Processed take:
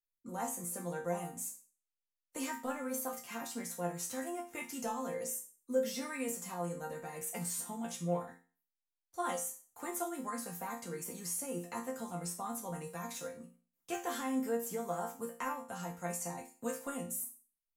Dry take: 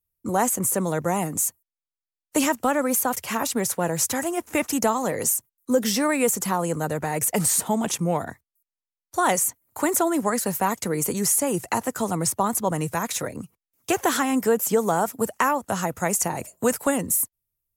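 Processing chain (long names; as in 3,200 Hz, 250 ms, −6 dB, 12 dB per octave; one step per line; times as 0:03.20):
resonators tuned to a chord F3 sus4, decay 0.37 s
level +1 dB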